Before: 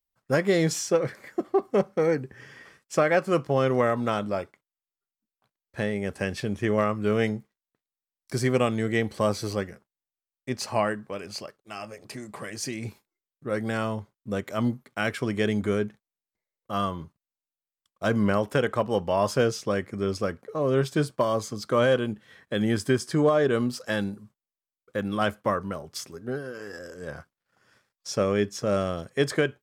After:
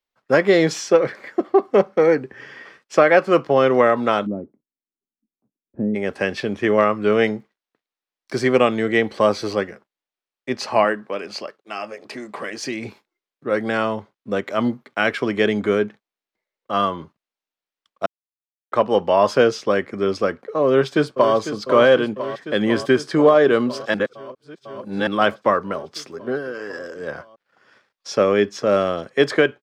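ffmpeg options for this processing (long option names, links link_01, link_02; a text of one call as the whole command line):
ffmpeg -i in.wav -filter_complex "[0:a]asplit=3[link_01][link_02][link_03];[link_01]afade=type=out:start_time=4.25:duration=0.02[link_04];[link_02]lowpass=frequency=250:width_type=q:width=2.4,afade=type=in:start_time=4.25:duration=0.02,afade=type=out:start_time=5.94:duration=0.02[link_05];[link_03]afade=type=in:start_time=5.94:duration=0.02[link_06];[link_04][link_05][link_06]amix=inputs=3:normalize=0,asettb=1/sr,asplit=3[link_07][link_08][link_09];[link_07]atrim=end=10.844[link_10];[link_08]atrim=start=10.84:end=12.63,asetpts=PTS-STARTPTS,afade=type=in:duration=0.004:curve=qsin,afade=type=out:start_time=1.786:duration=0.004:curve=qsin,highpass=150[link_11];[link_09]atrim=start=12.626[link_12];[link_10][link_11]acrossfade=duration=0.004:curve1=hsin:curve2=qsin[link_13];[link_13][link_12]acrossfade=duration=0.004:curve1=qsin:curve2=hsin,asplit=2[link_14][link_15];[link_15]afade=type=in:start_time=20.66:duration=0.01,afade=type=out:start_time=21.35:duration=0.01,aecho=0:1:500|1000|1500|2000|2500|3000|3500|4000|4500|5000|5500|6000:0.298538|0.238831|0.191064|0.152852|0.122281|0.097825|0.07826|0.062608|0.0500864|0.0400691|0.0320553|0.0256442[link_16];[link_14][link_16]amix=inputs=2:normalize=0,asplit=5[link_17][link_18][link_19][link_20][link_21];[link_17]atrim=end=18.06,asetpts=PTS-STARTPTS,afade=type=out:start_time=18.056:duration=0.004:curve=hsin[link_22];[link_18]atrim=start=18.06:end=18.72,asetpts=PTS-STARTPTS,volume=0[link_23];[link_19]atrim=start=18.72:end=23.942,asetpts=PTS-STARTPTS,afade=type=in:duration=0.004:curve=hsin[link_24];[link_20]atrim=start=23.938:end=25.072,asetpts=PTS-STARTPTS,areverse[link_25];[link_21]atrim=start=25.068[link_26];[link_22][link_23][link_24]concat=n=3:v=0:a=1[link_27];[link_27][link_25]acrossfade=duration=0.004:curve1=hsin:curve2=hsin[link_28];[link_28][link_26]acrossfade=duration=0.004:curve1=hsin:curve2=hsin,acrossover=split=220 5100:gain=0.2 1 0.141[link_29][link_30][link_31];[link_29][link_30][link_31]amix=inputs=3:normalize=0,volume=8.5dB" out.wav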